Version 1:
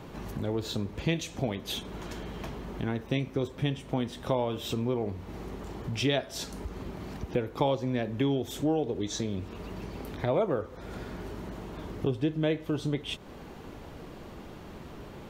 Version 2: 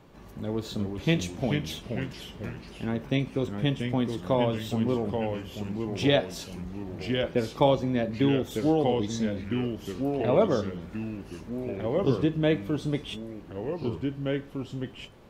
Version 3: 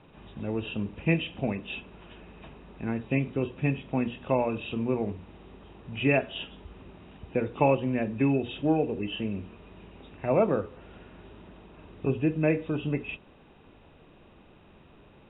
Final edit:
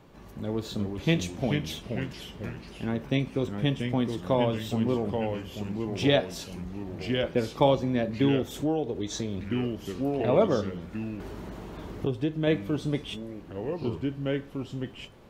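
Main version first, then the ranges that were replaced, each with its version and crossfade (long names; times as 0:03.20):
2
0:08.54–0:09.41: punch in from 1
0:11.20–0:12.47: punch in from 1
not used: 3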